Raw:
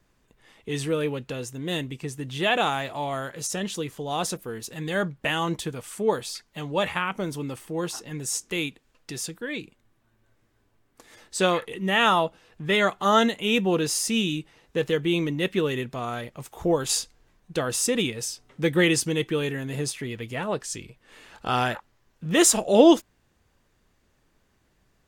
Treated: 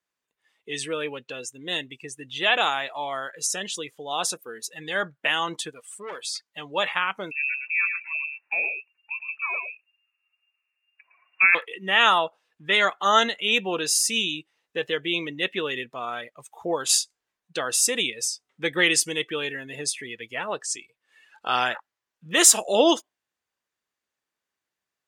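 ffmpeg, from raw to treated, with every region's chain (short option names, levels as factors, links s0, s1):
-filter_complex "[0:a]asettb=1/sr,asplit=3[s0][s1][s2];[s0]atrim=end=5.704[s3];[s1]atrim=start=5.7:end=6.23,asetpts=PTS-STARTPTS,afade=t=in:d=0.004:c=qsin,afade=t=out:st=0.526:d=0.004:c=qsin,lowshelf=f=410:g=-2,aeval=exprs='(tanh(31.6*val(0)+0.45)-tanh(0.45))/31.6':c=same[s4];[s2]atrim=start=6.226[s5];[s3][s4]acrossfade=d=0.004:c1=hsin:c2=qsin[s6];[s6][s5]acrossfade=d=0.004:c1=qsin:c2=hsin,asettb=1/sr,asplit=3[s7][s8][s9];[s7]atrim=end=7.314[s10];[s8]atrim=start=7.31:end=11.55,asetpts=PTS-STARTPTS,afade=t=in:d=0.004:c=qsin,afade=t=out:st=4.236:d=0.004:c=qsin,aecho=1:1:111:0.501,atrim=end_sample=186984,lowpass=f=2400:t=q:w=0.5098,lowpass=f=2400:t=q:w=0.6013,lowpass=f=2400:t=q:w=0.9,lowpass=f=2400:t=q:w=2.563,afreqshift=-2800[s11];[s9]atrim=start=11.546[s12];[s10][s11]acrossfade=d=0.004:c1=hsin:c2=qsin[s13];[s13][s12]acrossfade=d=0.004:c1=qsin:c2=hsin,highpass=f=1200:p=1,afftdn=nr=18:nf=-43,volume=1.78"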